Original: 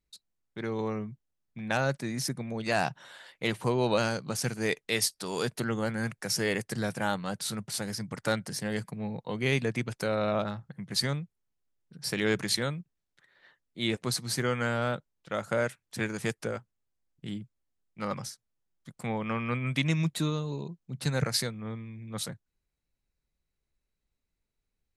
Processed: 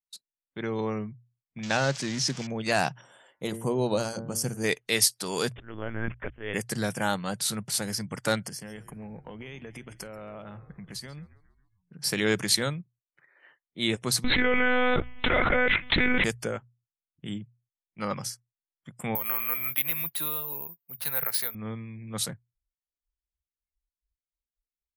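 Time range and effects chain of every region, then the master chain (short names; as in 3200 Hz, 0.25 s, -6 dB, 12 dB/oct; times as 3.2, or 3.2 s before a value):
1.63–2.47 switching spikes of -23 dBFS + LPF 5900 Hz 24 dB/oct
3.01–4.64 bell 2200 Hz -12.5 dB 2 oct + de-hum 113.7 Hz, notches 18
5.52–6.54 auto swell 0.47 s + LPC vocoder at 8 kHz pitch kept
8.48–11.98 compressor 8:1, threshold -40 dBFS + frequency-shifting echo 0.137 s, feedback 55%, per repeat -65 Hz, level -15.5 dB
14.24–16.24 bell 2100 Hz +12 dB 0.26 oct + monotone LPC vocoder at 8 kHz 250 Hz + fast leveller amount 100%
19.15–21.55 three-band isolator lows -17 dB, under 560 Hz, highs -18 dB, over 4400 Hz + compressor 1.5:1, threshold -41 dBFS + careless resampling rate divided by 3×, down none, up zero stuff
whole clip: high shelf 4700 Hz +6 dB; notches 60/120 Hz; spectral noise reduction 27 dB; gain +2 dB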